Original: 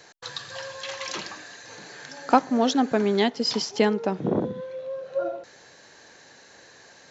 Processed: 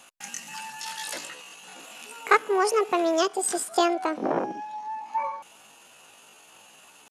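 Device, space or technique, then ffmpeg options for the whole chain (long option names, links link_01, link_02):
chipmunk voice: -filter_complex "[0:a]asettb=1/sr,asplit=3[link_01][link_02][link_03];[link_01]atrim=end=1.284[link_04];[link_02]atrim=start=1.28:end=1.81,asetpts=PTS-STARTPTS,afade=type=in:duration=0.004:curve=qsin,afade=type=out:start_time=0.526:duration=0.004:curve=qsin,lowpass=6000[link_05];[link_03]atrim=start=1.806[link_06];[link_04][link_05]acrossfade=duration=0.004:curve1=hsin:curve2=qsin[link_07];[link_07][link_06]acrossfade=duration=0.004:curve1=qsin:curve2=hsin,asetrate=72056,aresample=44100,atempo=0.612027,volume=-1dB"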